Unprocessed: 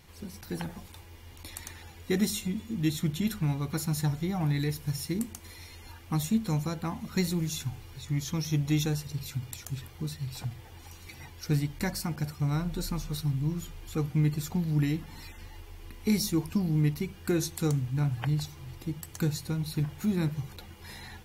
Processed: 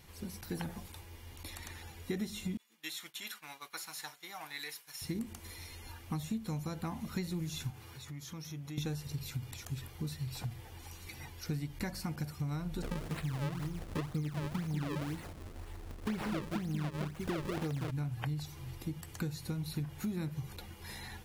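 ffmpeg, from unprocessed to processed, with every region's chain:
-filter_complex "[0:a]asettb=1/sr,asplit=3[s0][s1][s2];[s0]atrim=end=2.574[s3];[s1]atrim=start=2.57:end=5.02,asetpts=PTS-STARTPTS,afade=t=in:d=0.004:c=qsin,afade=t=out:st=2.446:d=0.004:c=qsin,highpass=1100,agate=range=0.0224:threshold=0.00447:ratio=3:release=100:detection=peak[s4];[s2]atrim=start=5.016[s5];[s3][s4]acrossfade=d=0.004:c1=hsin:c2=qsin[s6];[s6][s5]acrossfade=d=0.004:c1=qsin:c2=hsin,asettb=1/sr,asplit=3[s7][s8][s9];[s7]atrim=end=7.704[s10];[s8]atrim=start=7.7:end=8.78,asetpts=PTS-STARTPTS,afade=t=in:d=0.004:c=qsin,afade=t=out:st=1.076:d=0.004:c=qsin,highpass=94,equalizer=f=1300:w=1.2:g=4.5,acompressor=threshold=0.00631:ratio=3:attack=3.2:release=140:knee=1:detection=peak[s11];[s9]atrim=start=8.776[s12];[s10][s11]acrossfade=d=0.004:c1=hsin:c2=qsin[s13];[s13][s12]acrossfade=d=0.004:c1=qsin:c2=hsin,asettb=1/sr,asplit=3[s14][s15][s16];[s14]atrim=end=12.824[s17];[s15]atrim=start=12.82:end=17.91,asetpts=PTS-STARTPTS,afade=t=in:d=0.004:c=qsin,afade=t=out:st=5.086:d=0.004:c=qsin,aecho=1:1:189:0.562,atrim=end_sample=224469,acrusher=samples=35:mix=1:aa=0.000001:lfo=1:lforange=56:lforate=2[s18];[s16]atrim=start=17.906[s19];[s17][s18]acrossfade=d=0.004:c1=hsin:c2=qsin[s20];[s20][s19]acrossfade=d=0.004:c1=qsin:c2=hsin,acrossover=split=4500[s21][s22];[s22]acompressor=threshold=0.00631:ratio=4:attack=1:release=60[s23];[s21][s23]amix=inputs=2:normalize=0,equalizer=f=11000:t=o:w=0.62:g=3.5,acompressor=threshold=0.0251:ratio=6,volume=0.841"

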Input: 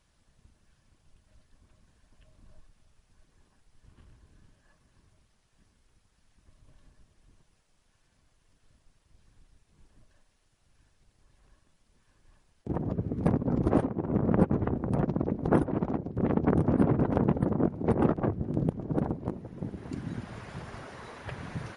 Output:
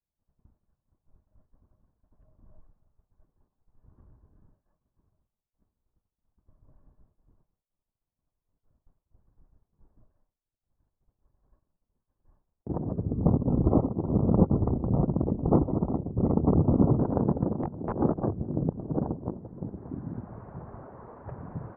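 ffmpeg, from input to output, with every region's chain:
-filter_complex "[0:a]asettb=1/sr,asplit=3[s0][s1][s2];[s0]atrim=end=13.034[s3];[s1]atrim=start=13.03:end=16.99,asetpts=PTS-STARTPTS,afade=t=in:d=0.004:c=qsin,afade=t=out:st=3.956:d=0.004:c=qsin,asuperstop=centerf=1600:order=20:qfactor=3.6,lowshelf=f=120:g=8.5[s4];[s2]atrim=start=16.986[s5];[s3][s4]acrossfade=d=0.004:c1=hsin:c2=qsin[s6];[s6][s5]acrossfade=d=0.004:c1=qsin:c2=hsin,asettb=1/sr,asplit=3[s7][s8][s9];[s7]atrim=end=17.524[s10];[s8]atrim=start=17.52:end=18.01,asetpts=PTS-STARTPTS,afade=t=in:d=0.004:c=qsin,afade=t=out:st=0.486:d=0.004:c=qsin,aeval=exprs='(mod(6.31*val(0)+1,2)-1)/6.31':c=same,acompressor=threshold=0.0224:ratio=1.5:attack=3.2:release=140:knee=1:detection=peak[s11];[s9]atrim=start=18.006[s12];[s10][s11]acrossfade=d=0.004:c1=hsin:c2=qsin[s13];[s13][s12]acrossfade=d=0.004:c1=qsin:c2=hsin,lowpass=f=1100:w=0.5412,lowpass=f=1100:w=1.3066,agate=range=0.0224:threshold=0.00178:ratio=3:detection=peak"

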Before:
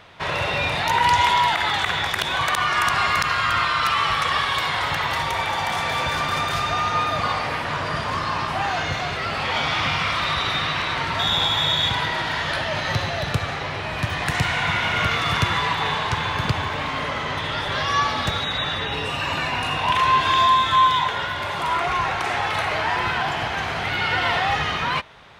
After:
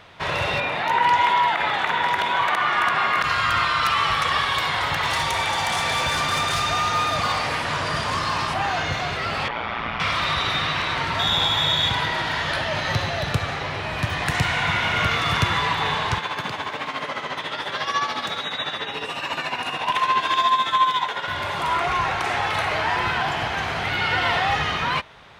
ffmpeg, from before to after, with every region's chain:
-filter_complex "[0:a]asettb=1/sr,asplit=3[s0][s1][s2];[s0]atrim=end=0.604[s3];[s1]atrim=start=0.6:end=3.24,asetpts=PTS-STARTPTS,afade=t=in:d=0.004:c=qsin,afade=t=out:st=2.636:d=0.004:c=qsin,acrossover=split=170 3000:gain=0.158 1 0.251[s4][s5][s6];[s4][s5][s6]amix=inputs=3:normalize=0,aecho=1:1:995:0.501,atrim=end_sample=116424[s7];[s2]atrim=start=3.236[s8];[s3][s7]acrossfade=d=0.004:c1=hsin:c2=qsin[s9];[s9][s8]acrossfade=d=0.004:c1=qsin:c2=hsin,asettb=1/sr,asplit=3[s10][s11][s12];[s10]atrim=end=5.034[s13];[s11]atrim=start=5.03:end=8.54,asetpts=PTS-STARTPTS,afade=t=in:d=0.004:c=qsin,afade=t=out:st=3.506:d=0.004:c=qsin,lowpass=f=11000:w=0.5412,lowpass=f=11000:w=1.3066,highshelf=f=4600:g=9.5,asoftclip=type=hard:threshold=0.141[s14];[s12]atrim=start=8.536[s15];[s13][s14]acrossfade=d=0.004:c1=hsin:c2=qsin[s16];[s16][s15]acrossfade=d=0.004:c1=qsin:c2=hsin,asettb=1/sr,asplit=3[s17][s18][s19];[s17]atrim=end=9.484[s20];[s18]atrim=start=9.48:end=10,asetpts=PTS-STARTPTS,afade=t=in:d=0.004:c=qsin,afade=t=out:st=0.516:d=0.004:c=qsin,highpass=120,lowpass=2100,aeval=exprs='val(0)*sin(2*PI*58*n/s)':c=same[s21];[s19]atrim=start=9.996[s22];[s20][s21]acrossfade=d=0.004:c1=hsin:c2=qsin[s23];[s23][s22]acrossfade=d=0.004:c1=qsin:c2=hsin,asettb=1/sr,asplit=3[s24][s25][s26];[s24]atrim=end=16.184[s27];[s25]atrim=start=16.18:end=21.28,asetpts=PTS-STARTPTS,afade=t=in:d=0.004:c=qsin,afade=t=out:st=5.096:d=0.004:c=qsin,highpass=220,tremolo=f=14:d=0.61[s28];[s26]atrim=start=21.276[s29];[s27][s28]acrossfade=d=0.004:c1=hsin:c2=qsin[s30];[s30][s29]acrossfade=d=0.004:c1=qsin:c2=hsin"

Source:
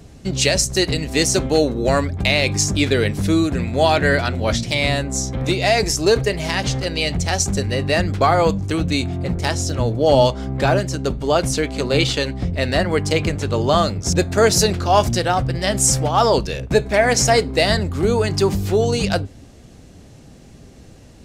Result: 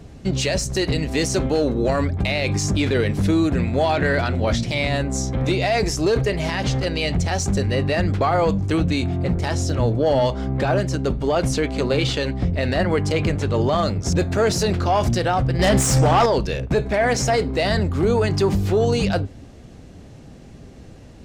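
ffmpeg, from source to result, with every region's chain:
-filter_complex "[0:a]asettb=1/sr,asplit=3[s0][s1][s2];[s0]atrim=end=15.594[s3];[s1]atrim=start=15.59:end=16.26,asetpts=PTS-STARTPTS,afade=t=in:d=0.004:c=qsin,afade=t=out:st=0.666:d=0.004:c=qsin,bandreject=f=290.4:t=h:w=4,bandreject=f=580.8:t=h:w=4,bandreject=f=871.2:t=h:w=4,bandreject=f=1161.6:t=h:w=4,bandreject=f=1452:t=h:w=4,bandreject=f=1742.4:t=h:w=4,bandreject=f=2032.8:t=h:w=4,bandreject=f=2323.2:t=h:w=4,bandreject=f=2613.6:t=h:w=4,bandreject=f=2904:t=h:w=4,bandreject=f=3194.4:t=h:w=4,bandreject=f=3484.8:t=h:w=4,bandreject=f=3775.2:t=h:w=4,bandreject=f=4065.6:t=h:w=4,bandreject=f=4356:t=h:w=4,bandreject=f=4646.4:t=h:w=4,bandreject=f=4936.8:t=h:w=4,bandreject=f=5227.2:t=h:w=4,bandreject=f=5517.6:t=h:w=4,bandreject=f=5808:t=h:w=4,bandreject=f=6098.4:t=h:w=4,bandreject=f=6388.8:t=h:w=4,bandreject=f=6679.2:t=h:w=4,bandreject=f=6969.6:t=h:w=4,bandreject=f=7260:t=h:w=4,bandreject=f=7550.4:t=h:w=4,bandreject=f=7840.8:t=h:w=4,bandreject=f=8131.2:t=h:w=4,bandreject=f=8421.6:t=h:w=4,acompressor=threshold=0.141:ratio=3:attack=3.2:release=140:knee=1:detection=peak,aeval=exprs='0.398*sin(PI/2*2.24*val(0)/0.398)':c=same[s4];[s2]atrim=start=16.256[s5];[s3][s4]acrossfade=d=0.004:c1=hsin:c2=qsin[s6];[s6][s5]acrossfade=d=0.004:c1=qsin:c2=hsin,acontrast=40,alimiter=limit=0.447:level=0:latency=1:release=22,highshelf=f=4700:g=-9,volume=0.631"

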